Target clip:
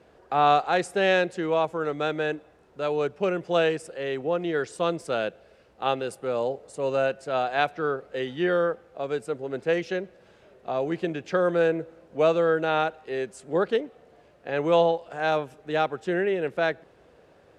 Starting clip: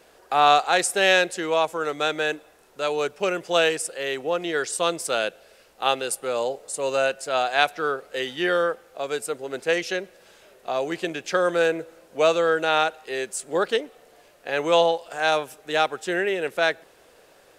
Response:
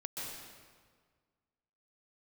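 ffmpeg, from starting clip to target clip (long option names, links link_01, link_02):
-af "highpass=86,aemphasis=mode=reproduction:type=riaa,volume=-3.5dB"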